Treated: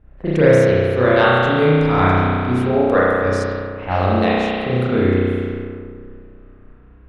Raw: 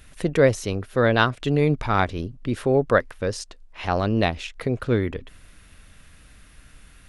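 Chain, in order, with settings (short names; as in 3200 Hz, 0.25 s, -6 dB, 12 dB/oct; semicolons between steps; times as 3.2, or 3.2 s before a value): spring tank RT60 2.3 s, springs 32 ms, chirp 50 ms, DRR -9.5 dB; crackle 15/s -44 dBFS; low-pass opened by the level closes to 730 Hz, open at -11 dBFS; gain -3 dB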